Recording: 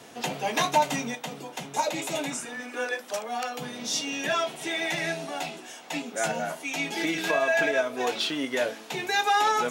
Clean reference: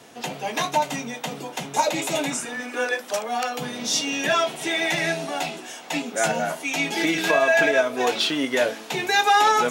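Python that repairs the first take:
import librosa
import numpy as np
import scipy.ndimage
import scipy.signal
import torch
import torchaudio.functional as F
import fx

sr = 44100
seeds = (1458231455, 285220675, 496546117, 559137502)

y = fx.fix_declip(x, sr, threshold_db=-13.0)
y = fx.fix_level(y, sr, at_s=1.15, step_db=5.5)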